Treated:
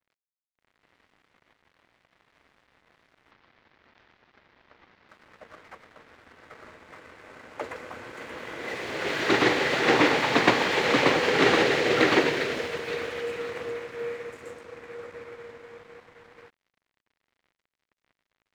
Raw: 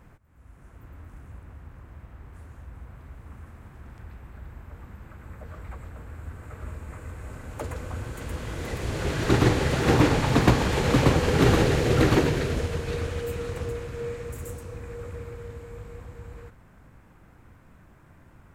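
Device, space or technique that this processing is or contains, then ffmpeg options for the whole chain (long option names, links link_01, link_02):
pocket radio on a weak battery: -filter_complex "[0:a]highpass=350,lowpass=3900,aeval=exprs='sgn(val(0))*max(abs(val(0))-0.00211,0)':channel_layout=same,equalizer=frequency=2000:width_type=o:width=0.43:gain=5,asettb=1/sr,asplit=3[link_01][link_02][link_03];[link_01]atrim=end=3.314[link_04];[link_02]atrim=start=3.31:end=5.09,asetpts=PTS-STARTPTS,afade=type=in:duration=0.004:curve=qsin,afade=type=out:start_time=1.776:duration=0.004:curve=qsin,lowpass=frequency=5500:width=0.5412,lowpass=frequency=5500:width=1.3066[link_05];[link_03]atrim=start=5.086[link_06];[link_04][link_05]acrossfade=duration=0.004:curve1=hsin:curve2=qsin[link_07];[link_07][link_06]acrossfade=duration=0.004:curve1=qsin:curve2=hsin,adynamicequalizer=threshold=0.00891:dfrequency=2500:dqfactor=0.7:tfrequency=2500:tqfactor=0.7:attack=5:release=100:ratio=0.375:range=3:mode=boostabove:tftype=highshelf,volume=2.5dB"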